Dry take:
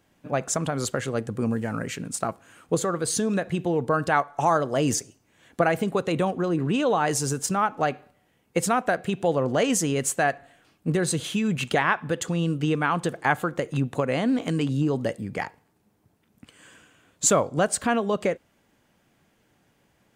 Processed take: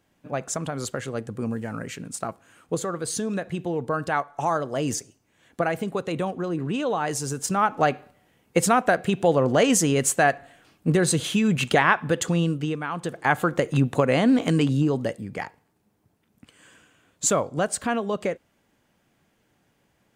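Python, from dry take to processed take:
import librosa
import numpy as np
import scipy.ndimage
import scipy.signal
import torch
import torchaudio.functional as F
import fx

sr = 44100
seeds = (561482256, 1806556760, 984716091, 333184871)

y = fx.gain(x, sr, db=fx.line((7.29, -3.0), (7.73, 3.5), (12.37, 3.5), (12.86, -7.0), (13.48, 4.5), (14.58, 4.5), (15.25, -2.0)))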